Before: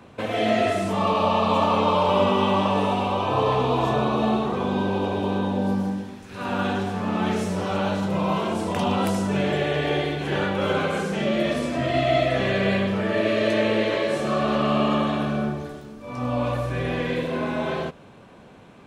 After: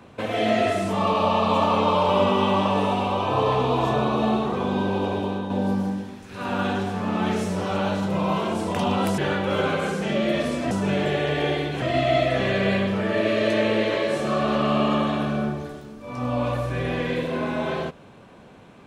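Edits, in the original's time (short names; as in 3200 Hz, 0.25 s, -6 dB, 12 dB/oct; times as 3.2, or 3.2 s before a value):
5.14–5.5 fade out, to -6.5 dB
9.18–10.29 move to 11.82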